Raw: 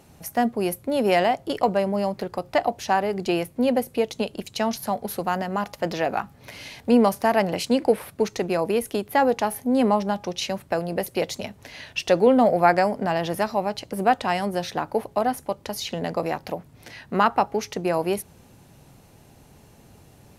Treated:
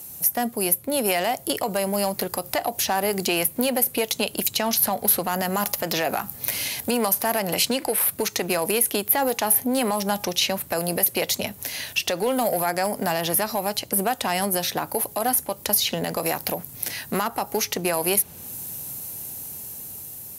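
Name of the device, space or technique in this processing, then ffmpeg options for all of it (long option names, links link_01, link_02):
FM broadcast chain: -filter_complex "[0:a]highpass=58,dynaudnorm=framelen=740:gausssize=5:maxgain=11.5dB,acrossover=split=700|4000[link_01][link_02][link_03];[link_01]acompressor=threshold=-23dB:ratio=4[link_04];[link_02]acompressor=threshold=-21dB:ratio=4[link_05];[link_03]acompressor=threshold=-46dB:ratio=4[link_06];[link_04][link_05][link_06]amix=inputs=3:normalize=0,aemphasis=mode=production:type=50fm,alimiter=limit=-13.5dB:level=0:latency=1:release=76,asoftclip=type=hard:threshold=-15.5dB,lowpass=frequency=15000:width=0.5412,lowpass=frequency=15000:width=1.3066,aemphasis=mode=production:type=50fm"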